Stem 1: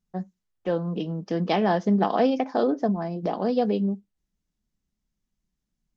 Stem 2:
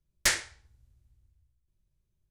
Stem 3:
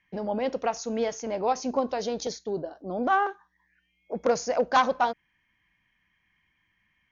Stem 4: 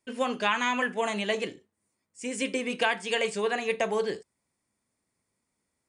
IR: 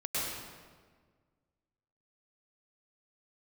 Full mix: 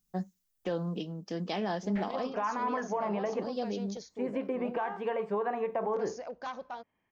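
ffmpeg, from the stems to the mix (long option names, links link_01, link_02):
-filter_complex "[0:a]aemphasis=mode=production:type=75kf,volume=8.5dB,afade=type=out:start_time=0.71:duration=0.36:silence=0.446684,afade=type=out:start_time=2.07:duration=0.26:silence=0.237137,afade=type=in:start_time=3.22:duration=0.41:silence=0.281838,asplit=2[link_01][link_02];[1:a]lowpass=frequency=2600:width=0.5412,lowpass=frequency=2600:width=1.3066,adelay=1700,volume=-18dB[link_03];[2:a]alimiter=limit=-21dB:level=0:latency=1:release=250,adelay=1700,volume=-11dB[link_04];[3:a]acompressor=threshold=-27dB:ratio=6,lowpass=frequency=1000:width_type=q:width=2.1,adelay=1950,volume=0dB[link_05];[link_02]apad=whole_len=345662[link_06];[link_05][link_06]sidechaincompress=threshold=-41dB:ratio=8:attack=16:release=210[link_07];[link_01][link_03][link_04][link_07]amix=inputs=4:normalize=0,alimiter=limit=-23dB:level=0:latency=1:release=51"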